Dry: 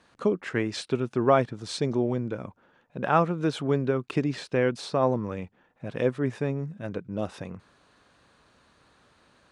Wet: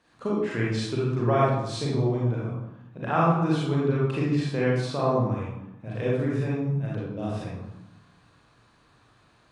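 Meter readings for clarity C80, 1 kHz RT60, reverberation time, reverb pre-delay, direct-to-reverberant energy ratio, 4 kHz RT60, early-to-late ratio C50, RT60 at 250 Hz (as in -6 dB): 3.5 dB, 0.95 s, 0.85 s, 34 ms, -6.0 dB, 0.55 s, -1.0 dB, 1.2 s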